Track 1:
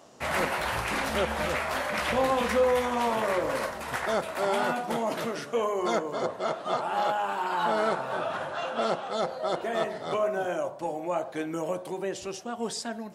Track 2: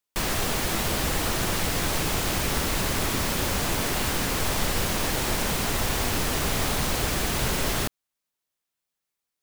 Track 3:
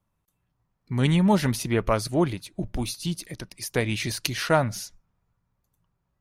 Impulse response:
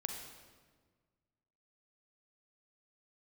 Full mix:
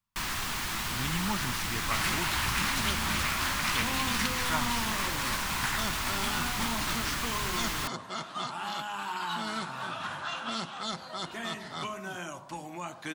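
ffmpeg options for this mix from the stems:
-filter_complex "[0:a]acrossover=split=290|3000[link_01][link_02][link_03];[link_02]acompressor=threshold=-39dB:ratio=5[link_04];[link_01][link_04][link_03]amix=inputs=3:normalize=0,adelay=1700,volume=0dB[link_05];[1:a]volume=-10dB[link_06];[2:a]volume=-14dB[link_07];[link_05][link_06][link_07]amix=inputs=3:normalize=0,firequalizer=gain_entry='entry(240,0);entry(500,-10);entry(990,7);entry(10000,2)':delay=0.05:min_phase=1"

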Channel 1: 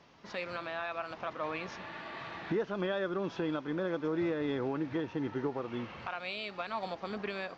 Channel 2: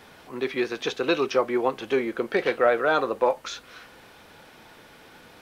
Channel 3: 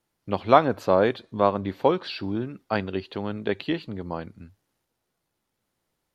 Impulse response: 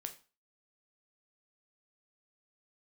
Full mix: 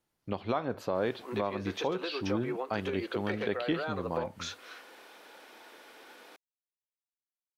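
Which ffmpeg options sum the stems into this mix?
-filter_complex "[1:a]highpass=frequency=290:width=0.5412,highpass=frequency=290:width=1.3066,acompressor=threshold=-29dB:ratio=12,adelay=950,volume=-2.5dB[link_01];[2:a]volume=-5.5dB,asplit=2[link_02][link_03];[link_03]volume=-9dB[link_04];[link_01][link_02]amix=inputs=2:normalize=0,alimiter=limit=-14.5dB:level=0:latency=1:release=480,volume=0dB[link_05];[3:a]atrim=start_sample=2205[link_06];[link_04][link_06]afir=irnorm=-1:irlink=0[link_07];[link_05][link_07]amix=inputs=2:normalize=0,alimiter=limit=-18.5dB:level=0:latency=1:release=196"

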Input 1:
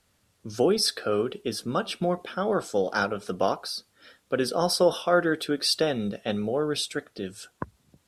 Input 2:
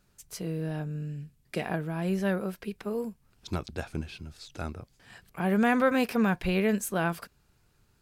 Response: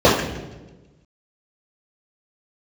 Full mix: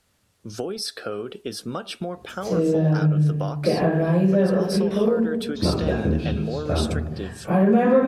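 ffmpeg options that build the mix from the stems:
-filter_complex "[0:a]acompressor=threshold=-27dB:ratio=10,volume=1.5dB,asplit=2[link_01][link_02];[1:a]adelay=2100,volume=-3.5dB,asplit=2[link_03][link_04];[link_04]volume=-13dB[link_05];[link_02]apad=whole_len=446189[link_06];[link_03][link_06]sidechaincompress=threshold=-32dB:ratio=8:attack=16:release=257[link_07];[2:a]atrim=start_sample=2205[link_08];[link_05][link_08]afir=irnorm=-1:irlink=0[link_09];[link_01][link_07][link_09]amix=inputs=3:normalize=0,acompressor=threshold=-17dB:ratio=3"

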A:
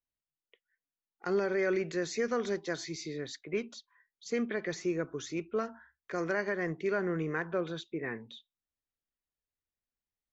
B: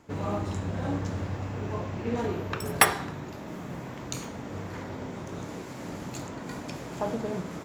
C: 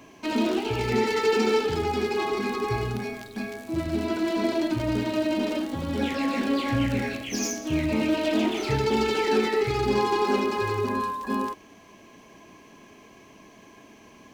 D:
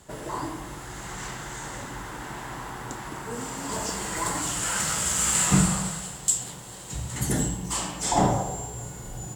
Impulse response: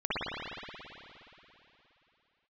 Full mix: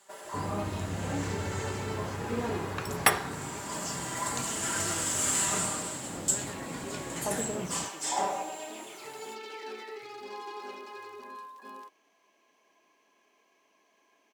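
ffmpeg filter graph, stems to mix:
-filter_complex "[0:a]volume=-14dB[link_01];[1:a]adelay=250,volume=-3dB[link_02];[2:a]highpass=490,adelay=350,volume=-15dB[link_03];[3:a]highpass=580,aecho=1:1:5.1:0.86,volume=-7dB[link_04];[link_01][link_02][link_03][link_04]amix=inputs=4:normalize=0"

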